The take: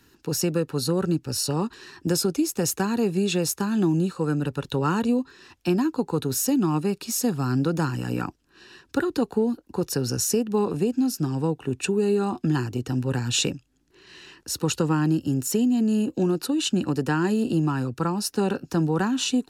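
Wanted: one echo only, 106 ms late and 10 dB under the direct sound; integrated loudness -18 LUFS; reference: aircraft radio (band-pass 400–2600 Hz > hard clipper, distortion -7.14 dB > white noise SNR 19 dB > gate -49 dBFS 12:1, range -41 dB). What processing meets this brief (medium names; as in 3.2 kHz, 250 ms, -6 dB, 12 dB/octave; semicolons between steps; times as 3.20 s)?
band-pass 400–2600 Hz; delay 106 ms -10 dB; hard clipper -30.5 dBFS; white noise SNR 19 dB; gate -49 dBFS 12:1, range -41 dB; trim +16.5 dB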